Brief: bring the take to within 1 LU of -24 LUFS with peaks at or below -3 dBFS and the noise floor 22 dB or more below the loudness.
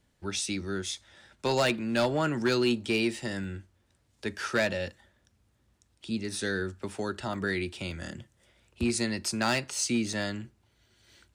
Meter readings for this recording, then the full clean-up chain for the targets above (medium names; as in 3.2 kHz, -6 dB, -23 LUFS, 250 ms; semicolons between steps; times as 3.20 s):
clipped samples 0.5%; clipping level -19.5 dBFS; dropouts 5; longest dropout 2.1 ms; loudness -30.5 LUFS; peak level -19.5 dBFS; loudness target -24.0 LUFS
-> clip repair -19.5 dBFS; interpolate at 0.86/3.44/7.34/7.91/10.13 s, 2.1 ms; trim +6.5 dB